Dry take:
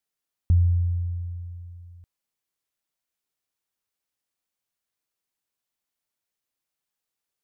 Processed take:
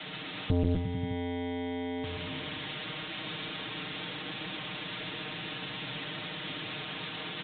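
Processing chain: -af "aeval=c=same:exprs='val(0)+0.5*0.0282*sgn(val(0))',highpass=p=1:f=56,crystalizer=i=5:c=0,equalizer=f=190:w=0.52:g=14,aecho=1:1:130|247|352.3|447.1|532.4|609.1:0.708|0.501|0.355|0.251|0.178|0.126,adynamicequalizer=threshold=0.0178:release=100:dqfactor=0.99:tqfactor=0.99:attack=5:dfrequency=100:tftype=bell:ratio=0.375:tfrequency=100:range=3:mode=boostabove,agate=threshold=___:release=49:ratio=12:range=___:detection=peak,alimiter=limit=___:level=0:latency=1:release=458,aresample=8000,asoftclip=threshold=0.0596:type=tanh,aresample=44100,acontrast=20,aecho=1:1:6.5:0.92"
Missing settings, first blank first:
0.2, 0.282, 0.316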